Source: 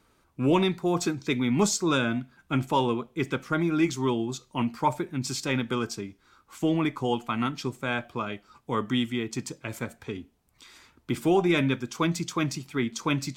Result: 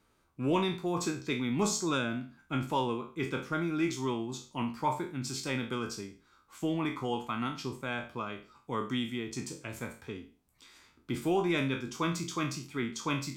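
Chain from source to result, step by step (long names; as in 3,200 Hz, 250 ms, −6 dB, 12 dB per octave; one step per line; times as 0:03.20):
peak hold with a decay on every bin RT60 0.38 s
level −7 dB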